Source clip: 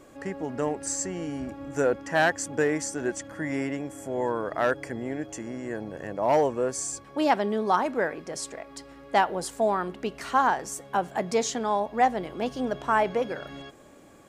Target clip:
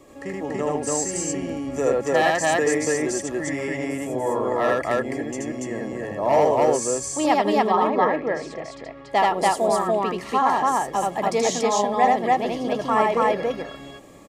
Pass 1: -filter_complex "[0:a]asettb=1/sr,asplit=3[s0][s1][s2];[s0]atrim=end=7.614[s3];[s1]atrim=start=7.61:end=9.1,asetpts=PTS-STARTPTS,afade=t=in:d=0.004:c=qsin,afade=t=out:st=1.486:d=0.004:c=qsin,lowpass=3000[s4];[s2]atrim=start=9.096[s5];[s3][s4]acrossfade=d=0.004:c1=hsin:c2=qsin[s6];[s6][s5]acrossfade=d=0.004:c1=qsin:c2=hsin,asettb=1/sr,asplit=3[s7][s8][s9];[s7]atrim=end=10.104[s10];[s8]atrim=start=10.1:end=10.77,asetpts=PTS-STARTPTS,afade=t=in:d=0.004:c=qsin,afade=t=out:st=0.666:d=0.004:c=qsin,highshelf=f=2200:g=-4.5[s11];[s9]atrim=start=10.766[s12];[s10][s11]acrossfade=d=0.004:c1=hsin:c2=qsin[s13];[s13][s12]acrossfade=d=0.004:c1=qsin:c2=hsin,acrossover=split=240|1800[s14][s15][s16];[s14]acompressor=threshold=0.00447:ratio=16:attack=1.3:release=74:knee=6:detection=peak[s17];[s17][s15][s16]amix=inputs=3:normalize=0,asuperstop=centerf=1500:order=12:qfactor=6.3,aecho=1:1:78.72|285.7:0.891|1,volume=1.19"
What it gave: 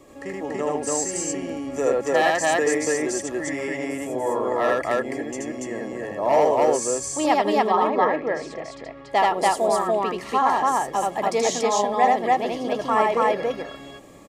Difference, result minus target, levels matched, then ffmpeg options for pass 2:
compression: peak gain reduction +9.5 dB
-filter_complex "[0:a]asettb=1/sr,asplit=3[s0][s1][s2];[s0]atrim=end=7.614[s3];[s1]atrim=start=7.61:end=9.1,asetpts=PTS-STARTPTS,afade=t=in:d=0.004:c=qsin,afade=t=out:st=1.486:d=0.004:c=qsin,lowpass=3000[s4];[s2]atrim=start=9.096[s5];[s3][s4]acrossfade=d=0.004:c1=hsin:c2=qsin[s6];[s6][s5]acrossfade=d=0.004:c1=qsin:c2=hsin,asettb=1/sr,asplit=3[s7][s8][s9];[s7]atrim=end=10.104[s10];[s8]atrim=start=10.1:end=10.77,asetpts=PTS-STARTPTS,afade=t=in:d=0.004:c=qsin,afade=t=out:st=0.666:d=0.004:c=qsin,highshelf=f=2200:g=-4.5[s11];[s9]atrim=start=10.766[s12];[s10][s11]acrossfade=d=0.004:c1=hsin:c2=qsin[s13];[s13][s12]acrossfade=d=0.004:c1=qsin:c2=hsin,acrossover=split=240|1800[s14][s15][s16];[s14]acompressor=threshold=0.0141:ratio=16:attack=1.3:release=74:knee=6:detection=peak[s17];[s17][s15][s16]amix=inputs=3:normalize=0,asuperstop=centerf=1500:order=12:qfactor=6.3,aecho=1:1:78.72|285.7:0.891|1,volume=1.19"

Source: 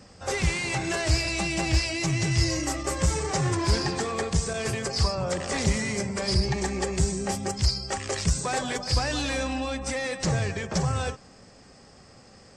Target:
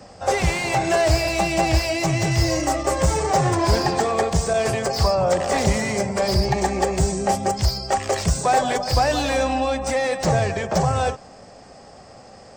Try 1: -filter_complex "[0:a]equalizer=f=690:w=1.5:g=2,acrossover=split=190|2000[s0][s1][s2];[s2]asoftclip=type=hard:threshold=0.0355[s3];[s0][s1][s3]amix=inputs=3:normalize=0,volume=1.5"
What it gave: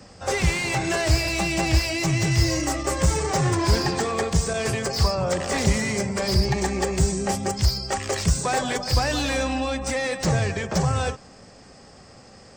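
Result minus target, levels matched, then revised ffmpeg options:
500 Hz band -3.0 dB
-filter_complex "[0:a]equalizer=f=690:w=1.5:g=11,acrossover=split=190|2000[s0][s1][s2];[s2]asoftclip=type=hard:threshold=0.0355[s3];[s0][s1][s3]amix=inputs=3:normalize=0,volume=1.5"

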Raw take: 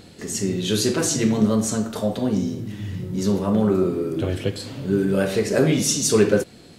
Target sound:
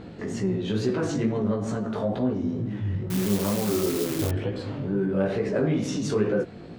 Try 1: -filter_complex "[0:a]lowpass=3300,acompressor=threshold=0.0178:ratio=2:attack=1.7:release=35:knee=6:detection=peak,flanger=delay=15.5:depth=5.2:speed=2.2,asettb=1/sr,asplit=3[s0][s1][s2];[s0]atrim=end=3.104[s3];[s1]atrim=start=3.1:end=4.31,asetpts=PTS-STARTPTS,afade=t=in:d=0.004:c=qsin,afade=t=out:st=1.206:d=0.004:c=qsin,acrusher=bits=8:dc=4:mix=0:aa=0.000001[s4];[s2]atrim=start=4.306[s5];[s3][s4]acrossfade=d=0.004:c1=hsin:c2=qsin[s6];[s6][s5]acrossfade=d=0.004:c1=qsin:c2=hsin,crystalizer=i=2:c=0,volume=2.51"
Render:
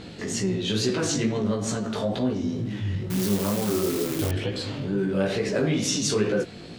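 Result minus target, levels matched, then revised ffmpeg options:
4 kHz band +7.5 dB
-filter_complex "[0:a]lowpass=1500,acompressor=threshold=0.0178:ratio=2:attack=1.7:release=35:knee=6:detection=peak,flanger=delay=15.5:depth=5.2:speed=2.2,asettb=1/sr,asplit=3[s0][s1][s2];[s0]atrim=end=3.104[s3];[s1]atrim=start=3.1:end=4.31,asetpts=PTS-STARTPTS,afade=t=in:d=0.004:c=qsin,afade=t=out:st=1.206:d=0.004:c=qsin,acrusher=bits=8:dc=4:mix=0:aa=0.000001[s4];[s2]atrim=start=4.306[s5];[s3][s4]acrossfade=d=0.004:c1=hsin:c2=qsin[s6];[s6][s5]acrossfade=d=0.004:c1=qsin:c2=hsin,crystalizer=i=2:c=0,volume=2.51"

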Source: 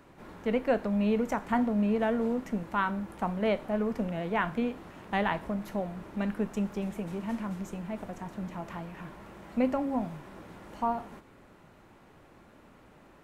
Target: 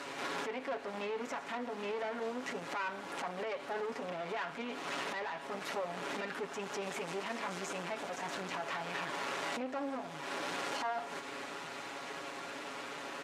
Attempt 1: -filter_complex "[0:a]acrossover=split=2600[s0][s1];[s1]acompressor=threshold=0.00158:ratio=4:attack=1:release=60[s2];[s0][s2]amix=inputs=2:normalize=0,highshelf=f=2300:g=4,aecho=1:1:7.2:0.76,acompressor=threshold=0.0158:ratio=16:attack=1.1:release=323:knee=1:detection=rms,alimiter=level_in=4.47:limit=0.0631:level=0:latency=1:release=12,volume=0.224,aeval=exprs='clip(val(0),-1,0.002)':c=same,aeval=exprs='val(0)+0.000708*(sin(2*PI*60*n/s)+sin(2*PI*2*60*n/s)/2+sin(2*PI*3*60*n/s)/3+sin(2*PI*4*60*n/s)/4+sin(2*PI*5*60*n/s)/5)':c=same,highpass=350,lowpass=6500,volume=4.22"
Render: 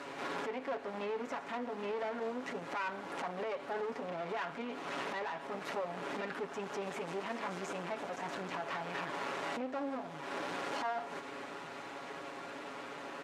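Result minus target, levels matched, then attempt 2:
4 kHz band -3.5 dB
-filter_complex "[0:a]acrossover=split=2600[s0][s1];[s1]acompressor=threshold=0.00158:ratio=4:attack=1:release=60[s2];[s0][s2]amix=inputs=2:normalize=0,highshelf=f=2300:g=12.5,aecho=1:1:7.2:0.76,acompressor=threshold=0.0158:ratio=16:attack=1.1:release=323:knee=1:detection=rms,alimiter=level_in=4.47:limit=0.0631:level=0:latency=1:release=12,volume=0.224,aeval=exprs='clip(val(0),-1,0.002)':c=same,aeval=exprs='val(0)+0.000708*(sin(2*PI*60*n/s)+sin(2*PI*2*60*n/s)/2+sin(2*PI*3*60*n/s)/3+sin(2*PI*4*60*n/s)/4+sin(2*PI*5*60*n/s)/5)':c=same,highpass=350,lowpass=6500,volume=4.22"

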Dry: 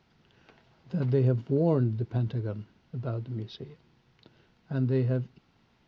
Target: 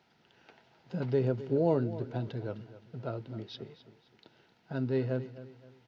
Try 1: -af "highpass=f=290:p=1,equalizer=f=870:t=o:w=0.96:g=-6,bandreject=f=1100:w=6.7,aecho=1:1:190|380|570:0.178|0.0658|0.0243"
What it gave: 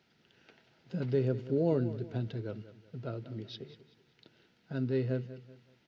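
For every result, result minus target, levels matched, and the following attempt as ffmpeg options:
1 kHz band -6.0 dB; echo 70 ms early
-af "highpass=f=290:p=1,equalizer=f=870:t=o:w=0.96:g=3,bandreject=f=1100:w=6.7,aecho=1:1:190|380|570:0.178|0.0658|0.0243"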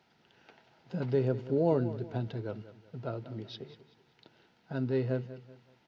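echo 70 ms early
-af "highpass=f=290:p=1,equalizer=f=870:t=o:w=0.96:g=3,bandreject=f=1100:w=6.7,aecho=1:1:260|520|780:0.178|0.0658|0.0243"

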